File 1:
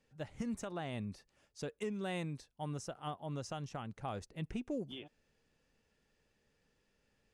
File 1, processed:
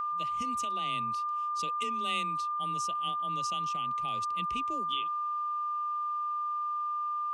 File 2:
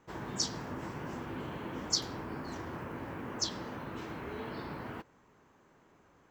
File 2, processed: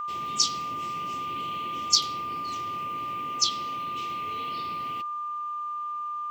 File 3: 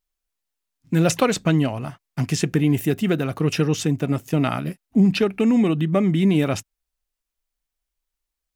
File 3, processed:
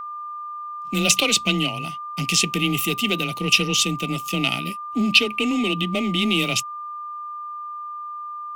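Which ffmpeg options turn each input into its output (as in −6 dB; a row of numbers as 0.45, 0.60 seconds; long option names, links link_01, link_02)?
-filter_complex "[0:a]afreqshift=21,asplit=2[link_01][link_02];[link_02]asoftclip=type=hard:threshold=-20.5dB,volume=-3.5dB[link_03];[link_01][link_03]amix=inputs=2:normalize=0,highshelf=frequency=2000:width_type=q:width=3:gain=11.5,aeval=exprs='val(0)+0.0794*sin(2*PI*1200*n/s)':channel_layout=same,asuperstop=centerf=1700:order=8:qfactor=7.9,volume=-8dB"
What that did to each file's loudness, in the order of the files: +10.5, +9.5, +0.5 LU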